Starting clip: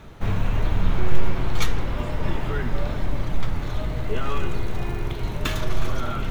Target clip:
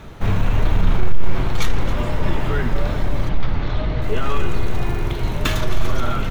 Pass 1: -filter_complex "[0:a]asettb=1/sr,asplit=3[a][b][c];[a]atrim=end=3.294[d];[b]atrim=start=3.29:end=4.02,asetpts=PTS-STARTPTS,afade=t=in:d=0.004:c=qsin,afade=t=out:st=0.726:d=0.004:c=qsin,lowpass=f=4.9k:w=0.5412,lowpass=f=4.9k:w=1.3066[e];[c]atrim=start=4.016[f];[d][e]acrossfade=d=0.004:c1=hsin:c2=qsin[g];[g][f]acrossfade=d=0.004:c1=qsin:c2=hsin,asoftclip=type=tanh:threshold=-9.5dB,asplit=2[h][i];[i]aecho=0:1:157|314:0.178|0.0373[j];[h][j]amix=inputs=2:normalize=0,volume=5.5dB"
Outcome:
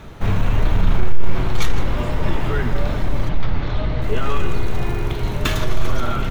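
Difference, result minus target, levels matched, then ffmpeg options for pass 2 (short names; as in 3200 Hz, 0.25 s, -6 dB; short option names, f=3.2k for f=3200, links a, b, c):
echo 0.112 s early
-filter_complex "[0:a]asettb=1/sr,asplit=3[a][b][c];[a]atrim=end=3.294[d];[b]atrim=start=3.29:end=4.02,asetpts=PTS-STARTPTS,afade=t=in:d=0.004:c=qsin,afade=t=out:st=0.726:d=0.004:c=qsin,lowpass=f=4.9k:w=0.5412,lowpass=f=4.9k:w=1.3066[e];[c]atrim=start=4.016[f];[d][e]acrossfade=d=0.004:c1=hsin:c2=qsin[g];[g][f]acrossfade=d=0.004:c1=qsin:c2=hsin,asoftclip=type=tanh:threshold=-9.5dB,asplit=2[h][i];[i]aecho=0:1:269|538:0.178|0.0373[j];[h][j]amix=inputs=2:normalize=0,volume=5.5dB"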